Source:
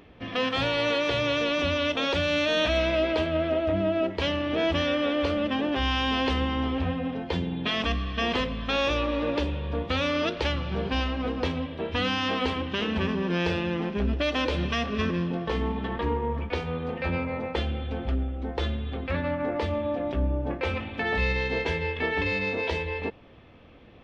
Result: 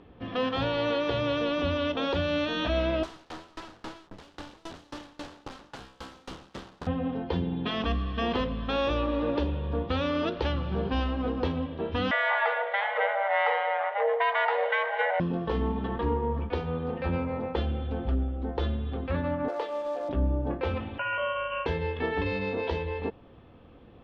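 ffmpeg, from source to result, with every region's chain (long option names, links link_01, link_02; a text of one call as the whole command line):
ffmpeg -i in.wav -filter_complex "[0:a]asettb=1/sr,asplit=3[link_01][link_02][link_03];[link_01]atrim=end=3.034[link_04];[link_02]atrim=start=3.03:end=6.87,asetpts=PTS-STARTPTS,afade=type=in:duration=0.004:curve=qsin,afade=type=out:start_time=3.836:duration=0.004:curve=qsin,acrusher=bits=5:dc=4:mix=0:aa=0.000001,aeval=exprs='(mod(22.4*val(0)+1,2)-1)/22.4':channel_layout=same,aeval=exprs='val(0)*pow(10,-27*if(lt(mod(3.7*n/s,1),2*abs(3.7)/1000),1-mod(3.7*n/s,1)/(2*abs(3.7)/1000),(mod(3.7*n/s,1)-2*abs(3.7)/1000)/(1-2*abs(3.7)/1000))/20)':channel_layout=same[link_05];[link_03]atrim=start=6.866[link_06];[link_04][link_05]acrossfade=duration=0.004:curve1=hsin:curve2=qsin[link_07];[link_07][link_06]acrossfade=duration=0.004:curve1=qsin:curve2=hsin,asettb=1/sr,asplit=3[link_08][link_09][link_10];[link_08]atrim=end=12.114[link_11];[link_09]atrim=start=12.11:end=15.2,asetpts=PTS-STARTPTS,afade=type=in:duration=0.004:curve=qsin,afade=type=out:start_time=3.086:duration=0.004:curve=qsin,afreqshift=400,lowpass=frequency=2000:width_type=q:width=7.5[link_12];[link_10]atrim=start=15.196[link_13];[link_11][link_12]acrossfade=duration=0.004:curve1=hsin:curve2=qsin[link_14];[link_14][link_13]acrossfade=duration=0.004:curve1=qsin:curve2=hsin,asettb=1/sr,asplit=3[link_15][link_16][link_17];[link_15]atrim=end=19.484[link_18];[link_16]atrim=start=19.48:end=20.09,asetpts=PTS-STARTPTS,afade=type=in:duration=0.004:curve=qsin,afade=type=out:start_time=0.606:duration=0.004:curve=qsin,highpass=frequency=420:width=0.5412,highpass=frequency=420:width=1.3066,acrusher=bits=4:mode=log:mix=0:aa=0.000001[link_19];[link_17]atrim=start=20.086[link_20];[link_18][link_19]acrossfade=duration=0.004:curve1=hsin:curve2=qsin[link_21];[link_21][link_20]acrossfade=duration=0.004:curve1=qsin:curve2=hsin,asettb=1/sr,asplit=3[link_22][link_23][link_24];[link_22]atrim=end=20.984[link_25];[link_23]atrim=start=20.98:end=21.66,asetpts=PTS-STARTPTS,afade=type=in:duration=0.004:curve=qsin,afade=type=out:start_time=0.676:duration=0.004:curve=qsin,aemphasis=mode=production:type=riaa,lowpass=frequency=2700:width_type=q:width=0.5098,lowpass=frequency=2700:width_type=q:width=0.6013,lowpass=frequency=2700:width_type=q:width=0.9,lowpass=frequency=2700:width_type=q:width=2.563,afreqshift=-3200[link_26];[link_24]atrim=start=21.656[link_27];[link_25][link_26]acrossfade=duration=0.004:curve1=hsin:curve2=qsin[link_28];[link_28][link_27]acrossfade=duration=0.004:curve1=qsin:curve2=hsin,lowpass=3300,equalizer=frequency=2200:width=1.8:gain=-9,bandreject=frequency=620:width=13" out.wav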